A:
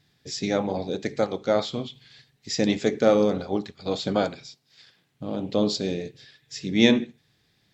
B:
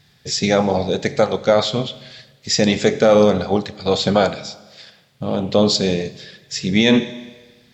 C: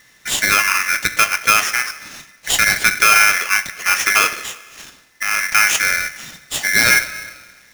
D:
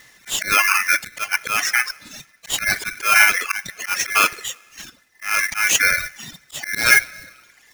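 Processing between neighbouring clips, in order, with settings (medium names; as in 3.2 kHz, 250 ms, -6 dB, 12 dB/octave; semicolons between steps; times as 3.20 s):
peaking EQ 300 Hz -9 dB 0.5 oct; Schroeder reverb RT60 1.3 s, combs from 29 ms, DRR 17 dB; loudness maximiser +12.5 dB; trim -1.5 dB
in parallel at -2 dB: compression, threshold -23 dBFS, peak gain reduction 14 dB; on the sum: polarity switched at an audio rate 1.9 kHz; trim -1 dB
coarse spectral quantiser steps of 15 dB; reverb removal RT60 0.99 s; slow attack 181 ms; trim +3 dB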